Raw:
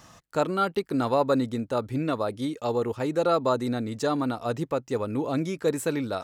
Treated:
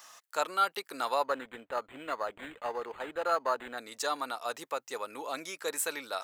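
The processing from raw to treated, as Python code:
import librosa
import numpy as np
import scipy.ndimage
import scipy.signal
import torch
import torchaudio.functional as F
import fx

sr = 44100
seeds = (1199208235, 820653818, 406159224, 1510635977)

y = scipy.signal.sosfilt(scipy.signal.butter(2, 890.0, 'highpass', fs=sr, output='sos'), x)
y = fx.high_shelf(y, sr, hz=9000.0, db=8.5)
y = fx.resample_linear(y, sr, factor=8, at=(1.24, 3.78))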